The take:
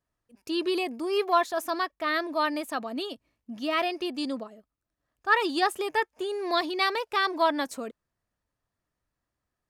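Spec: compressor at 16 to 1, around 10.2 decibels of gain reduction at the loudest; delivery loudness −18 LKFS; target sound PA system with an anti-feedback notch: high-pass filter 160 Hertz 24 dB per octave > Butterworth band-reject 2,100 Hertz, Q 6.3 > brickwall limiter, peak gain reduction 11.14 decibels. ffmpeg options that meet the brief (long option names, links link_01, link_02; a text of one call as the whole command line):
ffmpeg -i in.wav -af "acompressor=threshold=-27dB:ratio=16,highpass=frequency=160:width=0.5412,highpass=frequency=160:width=1.3066,asuperstop=centerf=2100:order=8:qfactor=6.3,volume=19.5dB,alimiter=limit=-9.5dB:level=0:latency=1" out.wav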